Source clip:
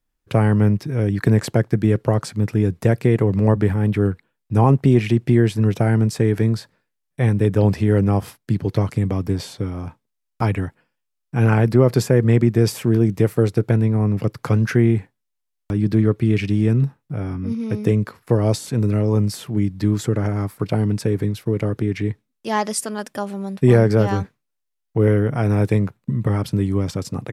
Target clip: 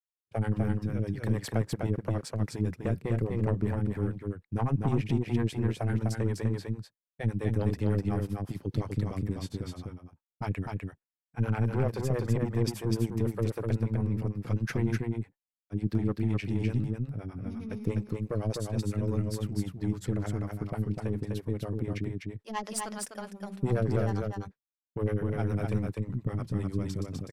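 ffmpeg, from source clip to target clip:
ffmpeg -i in.wav -filter_complex "[0:a]aeval=exprs='(tanh(3.16*val(0)+0.5)-tanh(0.5))/3.16':channel_layout=same,acrossover=split=420[link_01][link_02];[link_01]aeval=exprs='val(0)*(1-1/2+1/2*cos(2*PI*9.9*n/s))':channel_layout=same[link_03];[link_02]aeval=exprs='val(0)*(1-1/2-1/2*cos(2*PI*9.9*n/s))':channel_layout=same[link_04];[link_03][link_04]amix=inputs=2:normalize=0,asplit=2[link_05][link_06];[link_06]aecho=0:1:251:0.668[link_07];[link_05][link_07]amix=inputs=2:normalize=0,agate=range=-33dB:threshold=-32dB:ratio=3:detection=peak,volume=-6.5dB" out.wav

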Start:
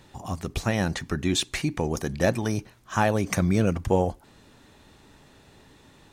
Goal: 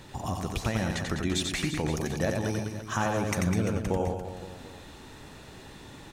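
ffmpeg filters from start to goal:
ffmpeg -i in.wav -filter_complex "[0:a]acompressor=threshold=-37dB:ratio=2.5,asplit=2[link_01][link_02];[link_02]aecho=0:1:90|202.5|343.1|518.9|738.6:0.631|0.398|0.251|0.158|0.1[link_03];[link_01][link_03]amix=inputs=2:normalize=0,volume=5dB" out.wav

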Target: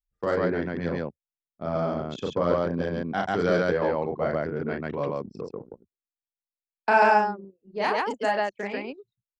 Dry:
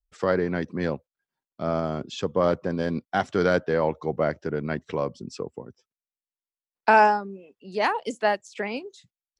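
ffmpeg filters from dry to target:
ffmpeg -i in.wav -af "aecho=1:1:34.99|139.9:0.708|1,anlmdn=25.1,volume=-4.5dB" out.wav

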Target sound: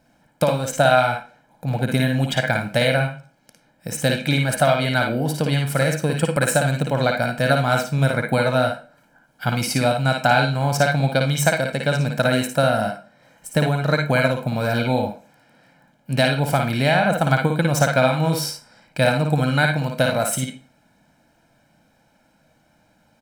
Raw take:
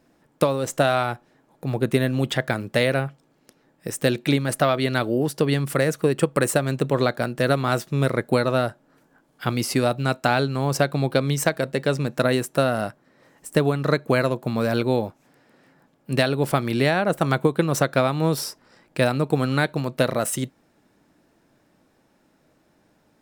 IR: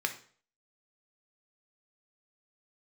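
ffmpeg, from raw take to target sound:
-filter_complex "[0:a]aecho=1:1:1.3:0.69,asplit=2[link_01][link_02];[1:a]atrim=start_sample=2205,asetrate=52920,aresample=44100,adelay=55[link_03];[link_02][link_03]afir=irnorm=-1:irlink=0,volume=-5dB[link_04];[link_01][link_04]amix=inputs=2:normalize=0"

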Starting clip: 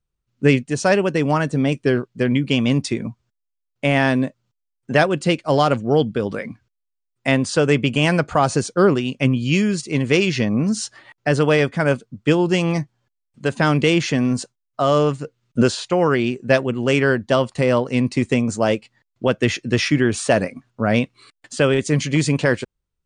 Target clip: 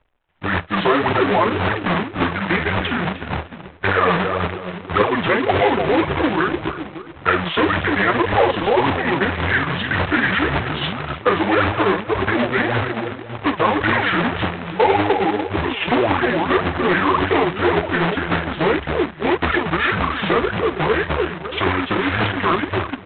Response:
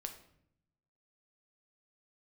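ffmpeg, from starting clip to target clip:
-filter_complex "[0:a]equalizer=frequency=83:width_type=o:width=1.6:gain=10.5,acompressor=threshold=-20dB:ratio=10,asplit=2[link_01][link_02];[link_02]adelay=45,volume=-7dB[link_03];[link_01][link_03]amix=inputs=2:normalize=0,asplit=2[link_04][link_05];[link_05]adelay=300,lowpass=frequency=1200:poles=1,volume=-3.5dB,asplit=2[link_06][link_07];[link_07]adelay=300,lowpass=frequency=1200:poles=1,volume=0.41,asplit=2[link_08][link_09];[link_09]adelay=300,lowpass=frequency=1200:poles=1,volume=0.41,asplit=2[link_10][link_11];[link_11]adelay=300,lowpass=frequency=1200:poles=1,volume=0.41,asplit=2[link_12][link_13];[link_13]adelay=300,lowpass=frequency=1200:poles=1,volume=0.41[link_14];[link_04][link_06][link_08][link_10][link_12][link_14]amix=inputs=6:normalize=0,aphaser=in_gain=1:out_gain=1:delay=4.4:decay=0.74:speed=1.8:type=triangular,asetrate=30296,aresample=44100,atempo=1.45565,aresample=8000,acrusher=bits=2:mode=log:mix=0:aa=0.000001,aresample=44100,apsyclip=14.5dB,acrossover=split=380 3100:gain=0.178 1 0.0708[link_15][link_16][link_17];[link_15][link_16][link_17]amix=inputs=3:normalize=0,volume=-4dB"

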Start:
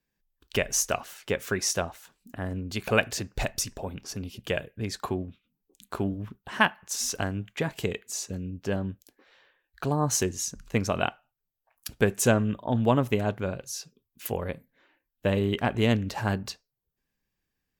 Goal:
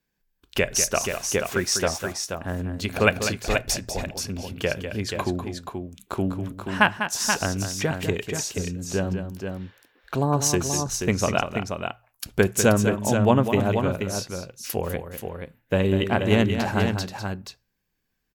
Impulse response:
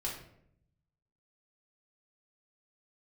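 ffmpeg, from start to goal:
-filter_complex "[0:a]bandreject=frequency=60:width_type=h:width=6,bandreject=frequency=120:width_type=h:width=6,asetrate=42777,aresample=44100,asplit=2[link_01][link_02];[link_02]aecho=0:1:198|480:0.355|0.473[link_03];[link_01][link_03]amix=inputs=2:normalize=0,volume=3.5dB"

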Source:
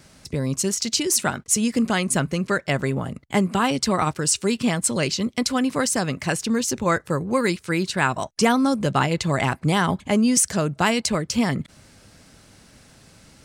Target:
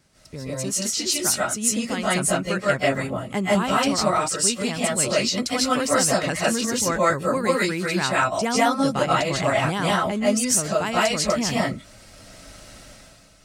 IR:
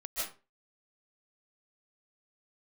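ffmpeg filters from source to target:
-filter_complex "[1:a]atrim=start_sample=2205,afade=type=out:start_time=0.23:duration=0.01,atrim=end_sample=10584[link_01];[0:a][link_01]afir=irnorm=-1:irlink=0,dynaudnorm=framelen=100:gausssize=11:maxgain=11.5dB,volume=-6dB"

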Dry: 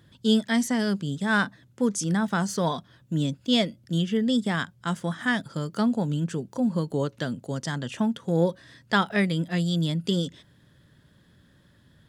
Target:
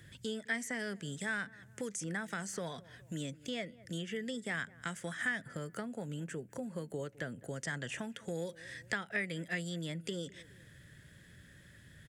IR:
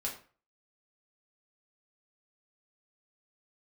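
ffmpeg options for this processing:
-filter_complex "[0:a]acrossover=split=310|2100[link_01][link_02][link_03];[link_01]acompressor=threshold=-38dB:ratio=4[link_04];[link_02]acompressor=threshold=-30dB:ratio=4[link_05];[link_03]acompressor=threshold=-45dB:ratio=4[link_06];[link_04][link_05][link_06]amix=inputs=3:normalize=0,asettb=1/sr,asplit=3[link_07][link_08][link_09];[link_07]atrim=end=5.434[link_10];[link_08]atrim=start=5.43:end=7.59,asetpts=PTS-STARTPTS,afade=type=in:duration=0.004:curve=qsin,afade=type=out:start_time=2.156:duration=0.004:curve=qsin,equalizer=frequency=5200:width=0.57:gain=-9[link_11];[link_09]atrim=start=7.586[link_12];[link_10][link_11]acrossfade=duration=0.004:curve1=hsin:curve2=qsin[link_13];[link_13][link_12]acrossfade=duration=0.004:curve1=qsin:curve2=hsin,asplit=2[link_14][link_15];[link_15]adelay=207,lowpass=frequency=1200:poles=1,volume=-22.5dB,asplit=2[link_16][link_17];[link_17]adelay=207,lowpass=frequency=1200:poles=1,volume=0.35[link_18];[link_14][link_16][link_18]amix=inputs=3:normalize=0,acompressor=threshold=-46dB:ratio=1.5,equalizer=frequency=250:width_type=o:width=1:gain=-6,equalizer=frequency=1000:width_type=o:width=1:gain=-11,equalizer=frequency=2000:width_type=o:width=1:gain=10,equalizer=frequency=4000:width_type=o:width=1:gain=-6,equalizer=frequency=8000:width_type=o:width=1:gain=8,volume=2dB"

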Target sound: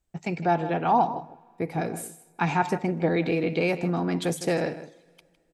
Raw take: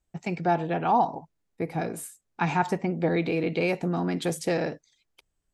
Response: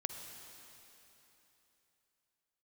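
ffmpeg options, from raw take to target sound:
-filter_complex "[0:a]asplit=2[link_01][link_02];[link_02]adelay=157.4,volume=-13dB,highshelf=frequency=4000:gain=-3.54[link_03];[link_01][link_03]amix=inputs=2:normalize=0,asplit=2[link_04][link_05];[1:a]atrim=start_sample=2205,asetrate=61740,aresample=44100[link_06];[link_05][link_06]afir=irnorm=-1:irlink=0,volume=-15.5dB[link_07];[link_04][link_07]amix=inputs=2:normalize=0"

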